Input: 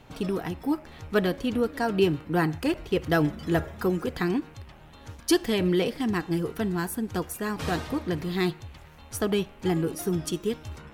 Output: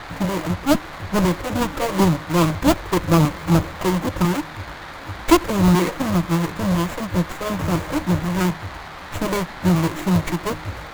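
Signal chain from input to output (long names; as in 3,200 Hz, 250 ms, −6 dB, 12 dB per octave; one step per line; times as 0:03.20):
each half-wave held at its own peak
EQ curve with evenly spaced ripples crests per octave 1.2, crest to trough 12 dB
auto-filter notch square 2 Hz 230–3,300 Hz
formants moved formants −6 semitones
noise in a band 670–2,400 Hz −37 dBFS
windowed peak hold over 9 samples
level +2 dB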